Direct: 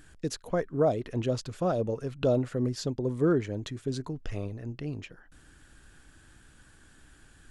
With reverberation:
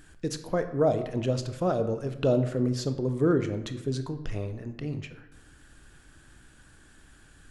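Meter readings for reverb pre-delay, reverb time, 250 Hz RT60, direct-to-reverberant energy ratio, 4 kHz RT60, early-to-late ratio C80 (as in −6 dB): 18 ms, 1.0 s, 0.95 s, 8.5 dB, 0.60 s, 13.5 dB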